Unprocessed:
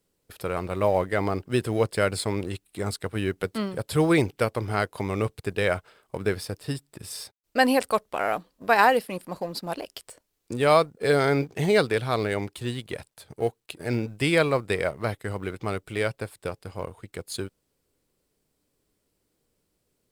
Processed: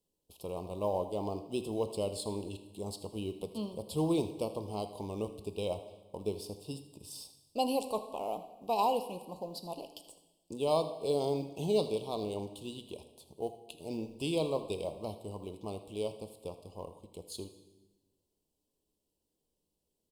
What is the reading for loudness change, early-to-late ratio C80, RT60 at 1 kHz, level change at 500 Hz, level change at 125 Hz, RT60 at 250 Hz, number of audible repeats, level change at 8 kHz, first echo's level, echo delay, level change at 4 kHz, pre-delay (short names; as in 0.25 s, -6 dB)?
-10.5 dB, 12.0 dB, 1.1 s, -9.0 dB, -12.5 dB, 1.3 s, 1, -9.0 dB, -15.0 dB, 80 ms, -9.0 dB, 8 ms